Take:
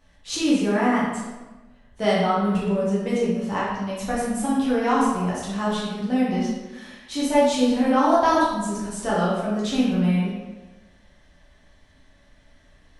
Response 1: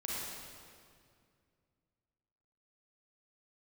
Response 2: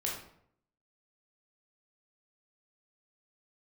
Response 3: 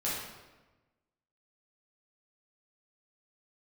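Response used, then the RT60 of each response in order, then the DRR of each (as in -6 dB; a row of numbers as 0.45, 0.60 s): 3; 2.2, 0.65, 1.2 s; -6.0, -3.5, -8.0 dB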